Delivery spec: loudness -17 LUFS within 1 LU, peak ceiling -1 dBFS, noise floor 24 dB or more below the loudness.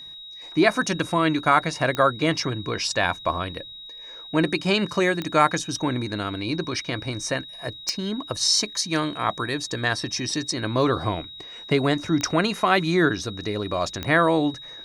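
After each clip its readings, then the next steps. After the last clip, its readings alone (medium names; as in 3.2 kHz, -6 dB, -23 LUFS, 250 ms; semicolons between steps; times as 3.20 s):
clicks found 5; steady tone 3.8 kHz; tone level -38 dBFS; loudness -23.5 LUFS; peak level -4.0 dBFS; loudness target -17.0 LUFS
-> de-click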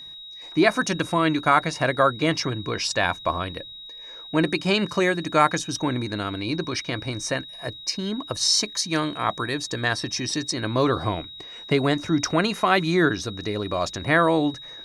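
clicks found 0; steady tone 3.8 kHz; tone level -38 dBFS
-> band-stop 3.8 kHz, Q 30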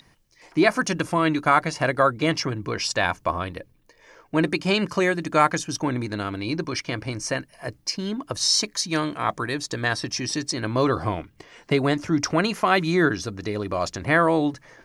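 steady tone not found; loudness -23.5 LUFS; peak level -4.0 dBFS; loudness target -17.0 LUFS
-> trim +6.5 dB; peak limiter -1 dBFS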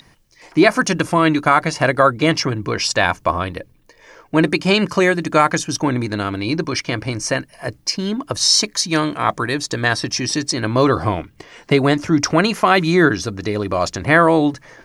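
loudness -17.5 LUFS; peak level -1.0 dBFS; noise floor -52 dBFS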